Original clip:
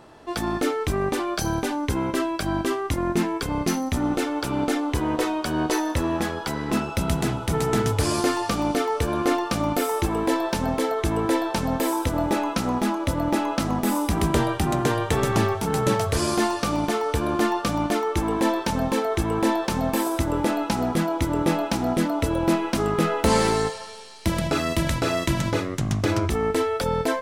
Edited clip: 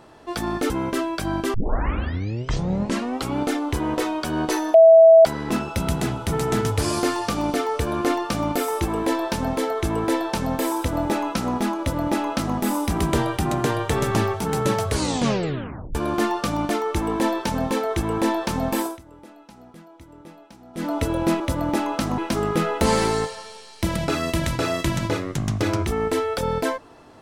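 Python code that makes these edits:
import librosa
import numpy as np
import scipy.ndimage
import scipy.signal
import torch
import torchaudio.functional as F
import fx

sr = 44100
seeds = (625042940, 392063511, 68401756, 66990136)

y = fx.edit(x, sr, fx.cut(start_s=0.7, length_s=1.21),
    fx.tape_start(start_s=2.75, length_s=1.85),
    fx.bleep(start_s=5.95, length_s=0.51, hz=654.0, db=-6.5),
    fx.duplicate(start_s=12.99, length_s=0.78, to_s=22.61),
    fx.tape_stop(start_s=16.1, length_s=1.06),
    fx.fade_down_up(start_s=20.03, length_s=2.08, db=-22.5, fade_s=0.17), tone=tone)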